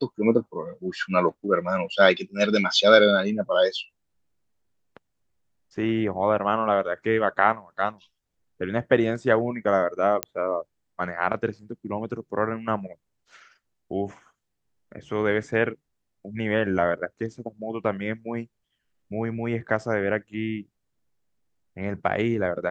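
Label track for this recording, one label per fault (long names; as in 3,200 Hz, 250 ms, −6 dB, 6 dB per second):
10.230000	10.230000	click −7 dBFS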